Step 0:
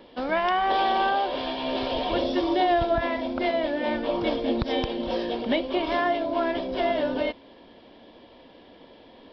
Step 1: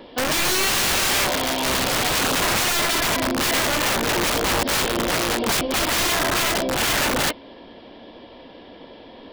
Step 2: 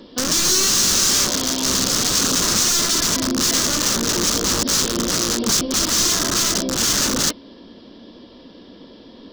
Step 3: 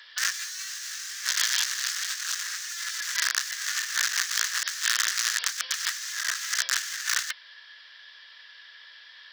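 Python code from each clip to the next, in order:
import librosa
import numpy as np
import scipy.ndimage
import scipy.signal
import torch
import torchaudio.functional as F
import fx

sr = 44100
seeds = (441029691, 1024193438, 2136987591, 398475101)

y1 = (np.mod(10.0 ** (23.5 / 20.0) * x + 1.0, 2.0) - 1.0) / 10.0 ** (23.5 / 20.0)
y1 = F.gain(torch.from_numpy(y1), 7.5).numpy()
y2 = fx.curve_eq(y1, sr, hz=(140.0, 200.0, 480.0, 790.0, 1200.0, 2300.0, 6200.0, 9800.0), db=(0, 6, -2, -10, -1, -8, 12, 0))
y3 = fx.ladder_highpass(y2, sr, hz=1600.0, resonance_pct=70)
y3 = fx.over_compress(y3, sr, threshold_db=-34.0, ratio=-0.5)
y3 = F.gain(torch.from_numpy(y3), 5.5).numpy()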